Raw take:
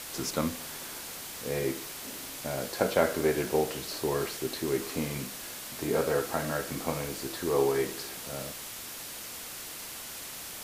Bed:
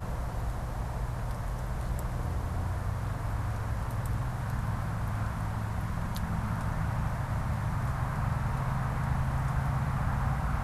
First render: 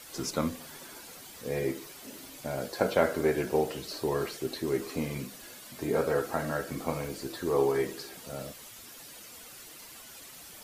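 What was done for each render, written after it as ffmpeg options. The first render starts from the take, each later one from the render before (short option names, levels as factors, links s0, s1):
-af "afftdn=nr=10:nf=-42"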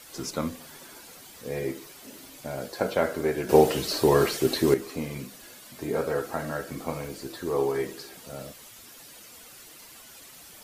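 -filter_complex "[0:a]asplit=3[s0][s1][s2];[s0]atrim=end=3.492[s3];[s1]atrim=start=3.488:end=4.742,asetpts=PTS-STARTPTS,volume=3.16[s4];[s2]atrim=start=4.738[s5];[s3][s4]acrossfade=d=0.004:c1=hsin:c2=hsin[s6];[s6][s5]acrossfade=d=0.004:c1=hsin:c2=hsin"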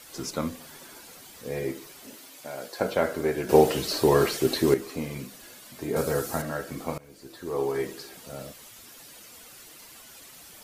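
-filter_complex "[0:a]asettb=1/sr,asplit=3[s0][s1][s2];[s0]atrim=end=2.154[s3];[s1]atrim=start=2.15:end=2.8,asetpts=PTS-STARTPTS,afade=t=in:d=0.004:c=qsin,afade=t=out:st=0.646:d=0.004:c=qsin,highpass=f=510:p=1[s4];[s2]atrim=start=2.796[s5];[s3][s4]acrossfade=d=0.004:c1=hsin:c2=qsin[s6];[s6][s5]acrossfade=d=0.004:c1=qsin:c2=hsin,asettb=1/sr,asplit=3[s7][s8][s9];[s7]atrim=end=5.964[s10];[s8]atrim=start=5.96:end=6.42,asetpts=PTS-STARTPTS,afade=t=in:d=0.004:c=qsin,afade=t=out:st=0.456:d=0.004:c=qsin,bass=f=250:g=7,treble=f=4000:g=11[s11];[s9]atrim=start=6.416[s12];[s10][s11]acrossfade=d=0.004:c1=hsin:c2=qsin[s13];[s13][s12]acrossfade=d=0.004:c1=qsin:c2=hsin,asplit=2[s14][s15];[s14]atrim=end=6.98,asetpts=PTS-STARTPTS,afade=t=out:st=6.976:d=0.004:c=hsin:silence=0.0944061[s16];[s15]atrim=start=6.98,asetpts=PTS-STARTPTS,afade=t=in:d=0.84:silence=0.0944061[s17];[s16][s17]concat=n=2:v=0:a=1"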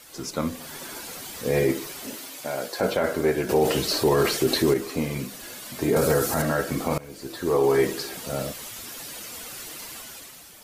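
-af "dynaudnorm=f=110:g=11:m=3.16,alimiter=limit=0.266:level=0:latency=1:release=25"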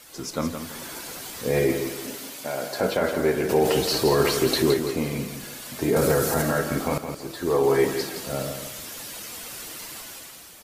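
-af "aecho=1:1:167|334|501|668:0.398|0.131|0.0434|0.0143"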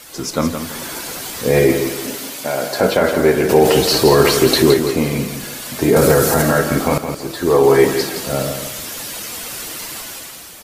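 -af "volume=2.82,alimiter=limit=0.891:level=0:latency=1"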